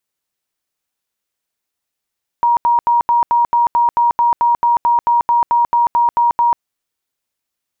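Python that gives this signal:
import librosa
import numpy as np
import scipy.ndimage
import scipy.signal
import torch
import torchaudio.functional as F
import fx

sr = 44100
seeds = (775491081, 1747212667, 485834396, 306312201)

y = fx.tone_burst(sr, hz=948.0, cycles=132, every_s=0.22, bursts=19, level_db=-9.5)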